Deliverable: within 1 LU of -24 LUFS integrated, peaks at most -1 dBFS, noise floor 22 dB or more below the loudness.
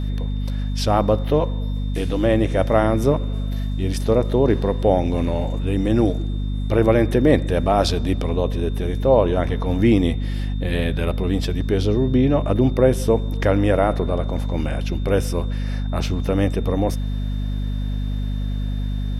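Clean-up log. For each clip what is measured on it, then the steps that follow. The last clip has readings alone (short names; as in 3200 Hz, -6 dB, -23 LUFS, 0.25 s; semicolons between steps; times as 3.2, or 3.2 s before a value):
hum 50 Hz; harmonics up to 250 Hz; hum level -21 dBFS; steady tone 3600 Hz; tone level -45 dBFS; loudness -21.0 LUFS; peak -2.5 dBFS; loudness target -24.0 LUFS
-> de-hum 50 Hz, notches 5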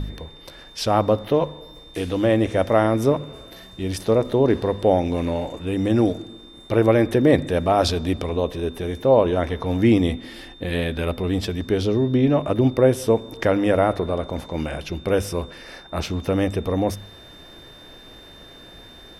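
hum none; steady tone 3600 Hz; tone level -45 dBFS
-> notch 3600 Hz, Q 30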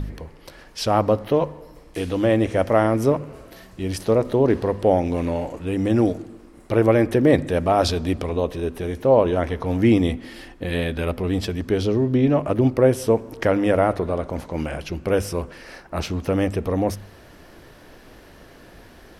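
steady tone none; loudness -21.5 LUFS; peak -3.0 dBFS; loudness target -24.0 LUFS
-> gain -2.5 dB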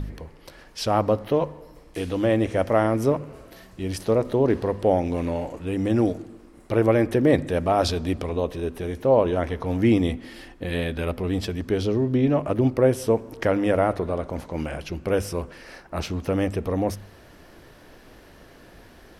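loudness -24.0 LUFS; peak -5.5 dBFS; noise floor -50 dBFS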